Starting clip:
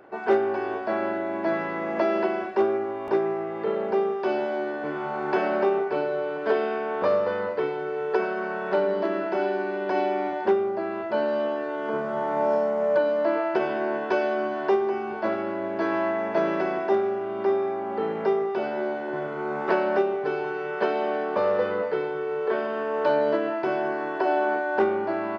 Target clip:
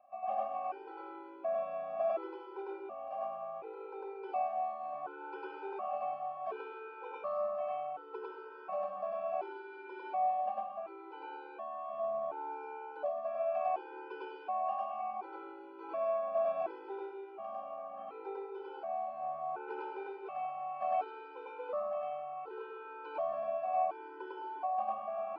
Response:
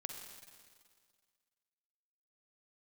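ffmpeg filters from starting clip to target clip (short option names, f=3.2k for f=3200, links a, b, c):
-filter_complex "[0:a]asplit=3[a][b][c];[a]bandpass=f=730:t=q:w=8,volume=0dB[d];[b]bandpass=f=1.09k:t=q:w=8,volume=-6dB[e];[c]bandpass=f=2.44k:t=q:w=8,volume=-9dB[f];[d][e][f]amix=inputs=3:normalize=0,asplit=2[g][h];[1:a]atrim=start_sample=2205,adelay=101[i];[h][i]afir=irnorm=-1:irlink=0,volume=5dB[j];[g][j]amix=inputs=2:normalize=0,afftfilt=real='re*gt(sin(2*PI*0.69*pts/sr)*(1-2*mod(floor(b*sr/1024/260),2)),0)':imag='im*gt(sin(2*PI*0.69*pts/sr)*(1-2*mod(floor(b*sr/1024/260),2)),0)':win_size=1024:overlap=0.75,volume=-3.5dB"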